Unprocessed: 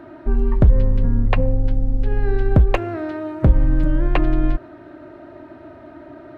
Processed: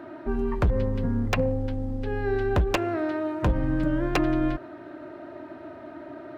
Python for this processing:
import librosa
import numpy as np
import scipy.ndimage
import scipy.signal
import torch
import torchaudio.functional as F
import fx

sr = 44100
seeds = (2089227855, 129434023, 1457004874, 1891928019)

y = fx.highpass(x, sr, hz=180.0, slope=6)
y = 10.0 ** (-14.0 / 20.0) * (np.abs((y / 10.0 ** (-14.0 / 20.0) + 3.0) % 4.0 - 2.0) - 1.0)